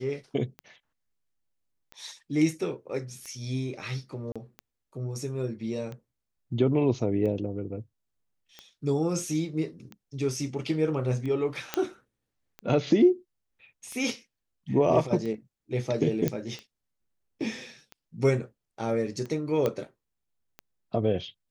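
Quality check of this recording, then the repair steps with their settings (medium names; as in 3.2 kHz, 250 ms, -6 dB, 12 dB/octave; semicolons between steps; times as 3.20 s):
tick 45 rpm -26 dBFS
4.32–4.36 s: dropout 36 ms
11.74 s: pop -11 dBFS
16.28 s: pop -13 dBFS
19.66 s: pop -14 dBFS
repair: de-click; interpolate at 4.32 s, 36 ms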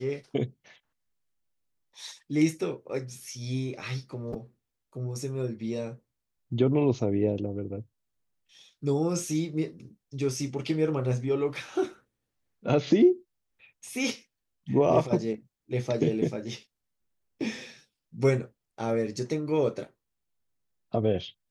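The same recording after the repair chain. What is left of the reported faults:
nothing left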